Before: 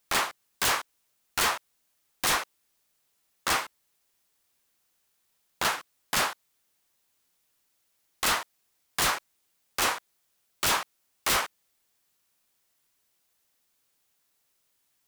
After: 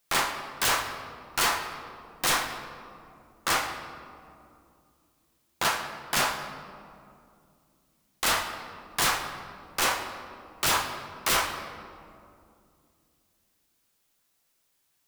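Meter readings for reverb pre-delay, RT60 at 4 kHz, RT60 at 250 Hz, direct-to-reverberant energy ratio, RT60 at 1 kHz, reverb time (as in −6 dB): 6 ms, 1.2 s, 3.3 s, 4.5 dB, 2.3 s, 2.5 s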